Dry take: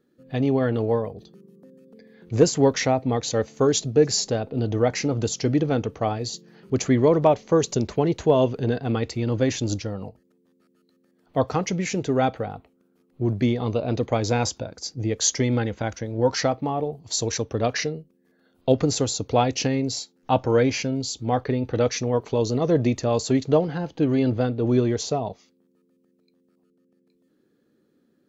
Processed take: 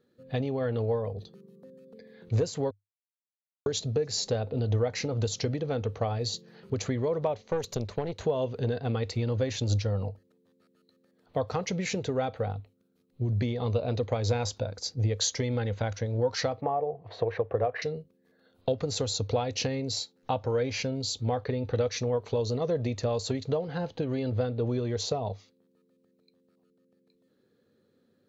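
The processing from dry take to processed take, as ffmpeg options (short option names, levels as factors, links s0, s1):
-filter_complex "[0:a]asettb=1/sr,asplit=3[s0][s1][s2];[s0]atrim=end=7.424[s3];[s1]atrim=start=7.42:end=8.21,asetpts=PTS-STARTPTS,afade=t=in:d=0.004:c=qsin,afade=t=out:st=0.786:d=0.004:c=qsin,aeval=exprs='(tanh(5.62*val(0)+0.8)-tanh(0.8))/5.62':c=same[s4];[s2]atrim=start=8.206[s5];[s3][s4]acrossfade=d=0.004:c1=hsin:c2=qsin[s6];[s6][s5]acrossfade=d=0.004:c1=qsin:c2=hsin,asettb=1/sr,asplit=3[s7][s8][s9];[s7]atrim=end=12.524[s10];[s8]atrim=start=12.52:end=13.38,asetpts=PTS-STARTPTS,afade=t=in:d=0.004:c=qsin,afade=t=out:st=0.856:d=0.004:c=qsin,equalizer=f=920:t=o:w=2.6:g=-9.5[s11];[s9]atrim=start=13.376[s12];[s10][s11]acrossfade=d=0.004:c1=hsin:c2=qsin[s13];[s13][s12]acrossfade=d=0.004:c1=qsin:c2=hsin,asettb=1/sr,asplit=3[s14][s15][s16];[s14]atrim=end=16.614[s17];[s15]atrim=start=16.61:end=17.82,asetpts=PTS-STARTPTS,afade=t=in:d=0.004:c=qsin,afade=t=out:st=1.206:d=0.004:c=qsin,highpass=110,equalizer=f=230:t=q:w=4:g=-7,equalizer=f=360:t=q:w=4:g=4,equalizer=f=500:t=q:w=4:g=6,equalizer=f=710:t=q:w=4:g=10,equalizer=f=1100:t=q:w=4:g=5,equalizer=f=1800:t=q:w=4:g=4,lowpass=f=2400:w=0.5412,lowpass=f=2400:w=1.3066[s18];[s16]atrim=start=17.816[s19];[s17][s18]acrossfade=d=0.004:c1=hsin:c2=qsin[s20];[s20][s19]acrossfade=d=0.004:c1=qsin:c2=hsin,asplit=3[s21][s22][s23];[s21]atrim=end=2.71,asetpts=PTS-STARTPTS,afade=t=out:st=2.706:d=0.004:c=hsin[s24];[s22]atrim=start=2.71:end=3.66,asetpts=PTS-STARTPTS,volume=0[s25];[s23]atrim=start=3.66,asetpts=PTS-STARTPTS,afade=t=in:d=0.004:c=hsin[s26];[s24][s25][s26]concat=n=3:v=0:a=1,bass=f=250:g=-2,treble=f=4000:g=-3,acompressor=threshold=0.0562:ratio=6,equalizer=f=100:t=o:w=0.33:g=12,equalizer=f=315:t=o:w=0.33:g=-8,equalizer=f=500:t=o:w=0.33:g=5,equalizer=f=4000:t=o:w=0.33:g=7,volume=0.841"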